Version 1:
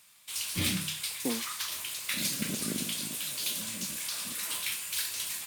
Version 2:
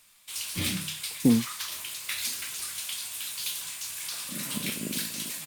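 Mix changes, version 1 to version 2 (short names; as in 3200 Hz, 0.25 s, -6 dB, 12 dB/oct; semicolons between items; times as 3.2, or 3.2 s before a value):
speech: remove HPF 540 Hz 12 dB/oct; second sound: entry +2.15 s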